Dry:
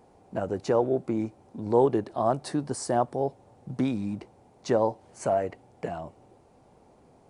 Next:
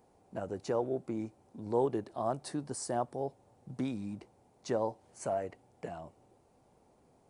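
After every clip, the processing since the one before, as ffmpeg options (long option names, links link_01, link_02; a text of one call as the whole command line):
ffmpeg -i in.wav -af "highshelf=frequency=7100:gain=8,volume=-8.5dB" out.wav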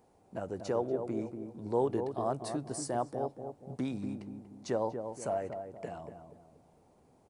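ffmpeg -i in.wav -filter_complex "[0:a]asplit=2[link_01][link_02];[link_02]adelay=238,lowpass=frequency=880:poles=1,volume=-6dB,asplit=2[link_03][link_04];[link_04]adelay=238,lowpass=frequency=880:poles=1,volume=0.44,asplit=2[link_05][link_06];[link_06]adelay=238,lowpass=frequency=880:poles=1,volume=0.44,asplit=2[link_07][link_08];[link_08]adelay=238,lowpass=frequency=880:poles=1,volume=0.44,asplit=2[link_09][link_10];[link_10]adelay=238,lowpass=frequency=880:poles=1,volume=0.44[link_11];[link_01][link_03][link_05][link_07][link_09][link_11]amix=inputs=6:normalize=0" out.wav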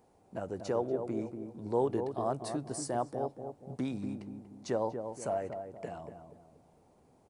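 ffmpeg -i in.wav -af anull out.wav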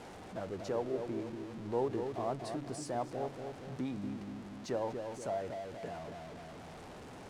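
ffmpeg -i in.wav -af "aeval=exprs='val(0)+0.5*0.0112*sgn(val(0))':channel_layout=same,adynamicsmooth=sensitivity=2:basefreq=7600,bandreject=frequency=72.67:width_type=h:width=4,bandreject=frequency=145.34:width_type=h:width=4,bandreject=frequency=218.01:width_type=h:width=4,bandreject=frequency=290.68:width_type=h:width=4,bandreject=frequency=363.35:width_type=h:width=4,bandreject=frequency=436.02:width_type=h:width=4,volume=-4.5dB" out.wav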